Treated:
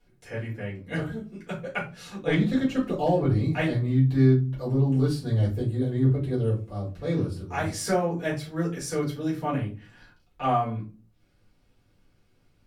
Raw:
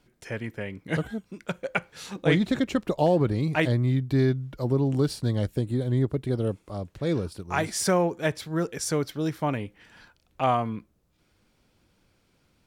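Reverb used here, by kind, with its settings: shoebox room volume 140 m³, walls furnished, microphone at 4 m; gain -11.5 dB

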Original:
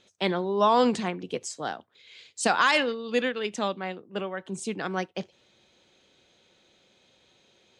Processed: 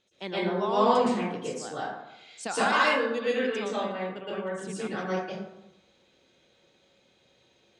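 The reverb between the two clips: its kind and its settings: plate-style reverb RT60 0.91 s, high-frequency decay 0.45×, pre-delay 0.105 s, DRR -9.5 dB; gain -11 dB

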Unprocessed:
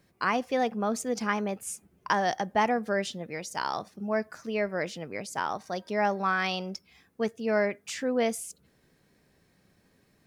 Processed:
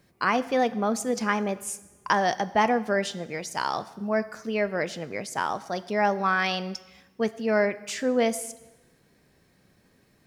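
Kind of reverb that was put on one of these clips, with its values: plate-style reverb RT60 1.1 s, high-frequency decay 0.9×, DRR 14.5 dB; gain +3 dB

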